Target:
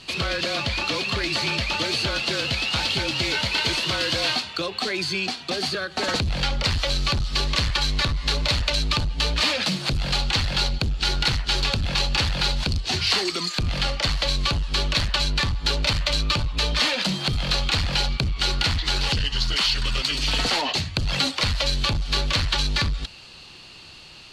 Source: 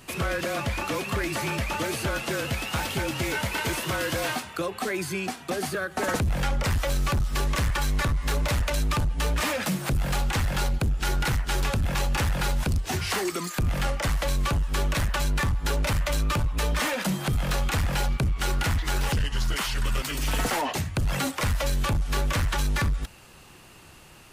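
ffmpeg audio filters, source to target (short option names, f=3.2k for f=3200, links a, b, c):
-af "lowpass=f=4.4k:t=q:w=9,aexciter=amount=1.8:drive=2.5:freq=2.5k"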